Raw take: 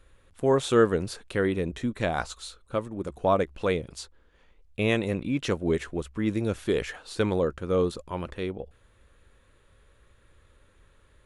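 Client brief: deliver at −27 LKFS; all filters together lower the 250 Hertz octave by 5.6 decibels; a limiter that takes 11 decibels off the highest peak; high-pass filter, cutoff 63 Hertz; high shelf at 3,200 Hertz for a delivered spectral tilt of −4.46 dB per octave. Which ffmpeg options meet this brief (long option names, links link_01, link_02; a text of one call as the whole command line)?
ffmpeg -i in.wav -af "highpass=63,equalizer=frequency=250:width_type=o:gain=-8,highshelf=frequency=3200:gain=4.5,volume=6.5dB,alimiter=limit=-15dB:level=0:latency=1" out.wav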